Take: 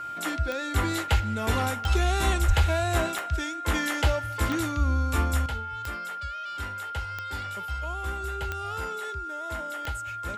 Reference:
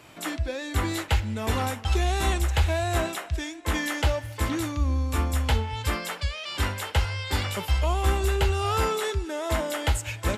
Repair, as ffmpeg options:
-filter_complex "[0:a]adeclick=t=4,bandreject=f=1.4k:w=30,asplit=3[a][b][c];[a]afade=t=out:st=2.47:d=0.02[d];[b]highpass=f=140:w=0.5412,highpass=f=140:w=1.3066,afade=t=in:st=2.47:d=0.02,afade=t=out:st=2.59:d=0.02[e];[c]afade=t=in:st=2.59:d=0.02[f];[d][e][f]amix=inputs=3:normalize=0,asetnsamples=n=441:p=0,asendcmd='5.46 volume volume 11dB',volume=0dB"

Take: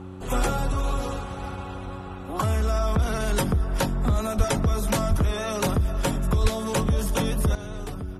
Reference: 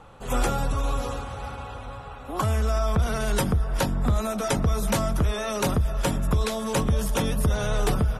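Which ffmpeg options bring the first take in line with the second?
-filter_complex "[0:a]bandreject=f=93:t=h:w=4,bandreject=f=186:t=h:w=4,bandreject=f=279:t=h:w=4,bandreject=f=372:t=h:w=4,asplit=3[a][b][c];[a]afade=t=out:st=4.37:d=0.02[d];[b]highpass=f=140:w=0.5412,highpass=f=140:w=1.3066,afade=t=in:st=4.37:d=0.02,afade=t=out:st=4.49:d=0.02[e];[c]afade=t=in:st=4.49:d=0.02[f];[d][e][f]amix=inputs=3:normalize=0,asplit=3[g][h][i];[g]afade=t=out:st=5.09:d=0.02[j];[h]highpass=f=140:w=0.5412,highpass=f=140:w=1.3066,afade=t=in:st=5.09:d=0.02,afade=t=out:st=5.21:d=0.02[k];[i]afade=t=in:st=5.21:d=0.02[l];[j][k][l]amix=inputs=3:normalize=0,asplit=3[m][n][o];[m]afade=t=out:st=6.42:d=0.02[p];[n]highpass=f=140:w=0.5412,highpass=f=140:w=1.3066,afade=t=in:st=6.42:d=0.02,afade=t=out:st=6.54:d=0.02[q];[o]afade=t=in:st=6.54:d=0.02[r];[p][q][r]amix=inputs=3:normalize=0,asetnsamples=n=441:p=0,asendcmd='7.55 volume volume 11.5dB',volume=0dB"

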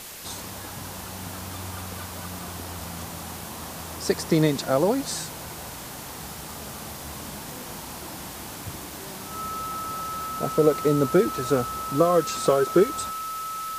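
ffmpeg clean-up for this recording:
-af "bandreject=f=1.3k:w=30,afwtdn=0.011"

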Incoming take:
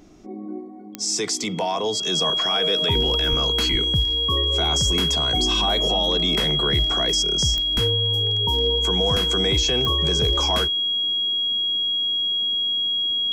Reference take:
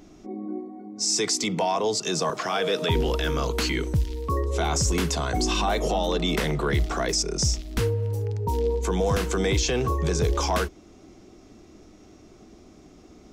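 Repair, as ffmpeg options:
-filter_complex "[0:a]adeclick=t=4,bandreject=f=3.3k:w=30,asplit=3[a][b][c];[a]afade=t=out:st=3.29:d=0.02[d];[b]highpass=f=140:w=0.5412,highpass=f=140:w=1.3066,afade=t=in:st=3.29:d=0.02,afade=t=out:st=3.41:d=0.02[e];[c]afade=t=in:st=3.41:d=0.02[f];[d][e][f]amix=inputs=3:normalize=0,asplit=3[g][h][i];[g]afade=t=out:st=3.71:d=0.02[j];[h]highpass=f=140:w=0.5412,highpass=f=140:w=1.3066,afade=t=in:st=3.71:d=0.02,afade=t=out:st=3.83:d=0.02[k];[i]afade=t=in:st=3.83:d=0.02[l];[j][k][l]amix=inputs=3:normalize=0"

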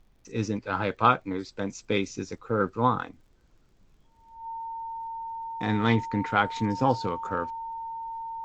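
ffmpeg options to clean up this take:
-af "adeclick=t=4,bandreject=f=910:w=30,agate=range=-21dB:threshold=-51dB"

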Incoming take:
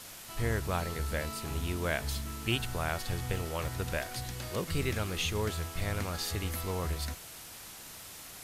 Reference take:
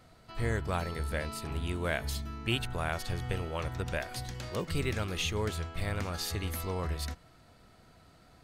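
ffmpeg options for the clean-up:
-af "adeclick=t=4,afwtdn=0.005"

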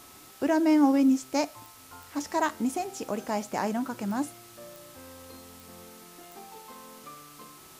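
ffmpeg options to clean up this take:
-af "adeclick=t=4,bandreject=f=1.3k:w=30,afftdn=nr=21:nf=-51"

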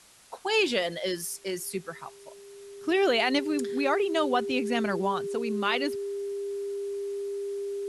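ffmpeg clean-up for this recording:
-af "adeclick=t=4,bandreject=f=400:w=30,afwtdn=0.002"

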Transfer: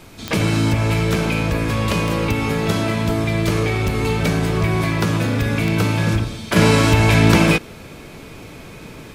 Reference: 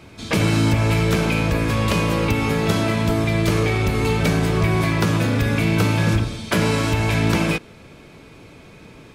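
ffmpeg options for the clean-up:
-af "adeclick=t=4,agate=range=-21dB:threshold=-29dB,asetnsamples=n=441:p=0,asendcmd='6.56 volume volume -6dB',volume=0dB"

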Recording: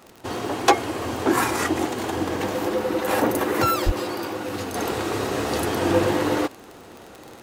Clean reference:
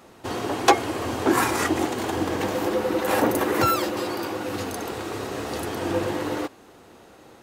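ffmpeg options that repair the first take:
-filter_complex "[0:a]adeclick=t=4,asplit=3[a][b][c];[a]afade=t=out:st=3.85:d=0.02[d];[b]highpass=f=140:w=0.5412,highpass=f=140:w=1.3066,afade=t=in:st=3.85:d=0.02,afade=t=out:st=3.97:d=0.02[e];[c]afade=t=in:st=3.97:d=0.02[f];[d][e][f]amix=inputs=3:normalize=0,asetnsamples=n=441:p=0,asendcmd='4.75 volume volume -5.5dB',volume=0dB"

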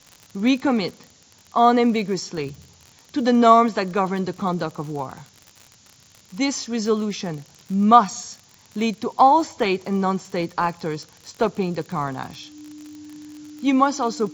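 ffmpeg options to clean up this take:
-af "adeclick=t=4,bandreject=f=300:w=30,afftdn=nr=13:nf=-53"

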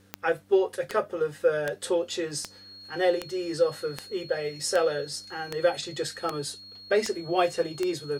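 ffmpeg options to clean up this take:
-af "adeclick=t=4,bandreject=f=97.5:t=h:w=4,bandreject=f=195:t=h:w=4,bandreject=f=292.5:t=h:w=4,bandreject=f=4.3k:w=30"

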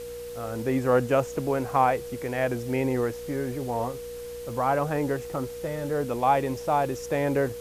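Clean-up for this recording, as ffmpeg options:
-af "adeclick=t=4,bandreject=f=59.8:t=h:w=4,bandreject=f=119.6:t=h:w=4,bandreject=f=179.4:t=h:w=4,bandreject=f=239.2:t=h:w=4,bandreject=f=299:t=h:w=4,bandreject=f=480:w=30,afwtdn=0.004"

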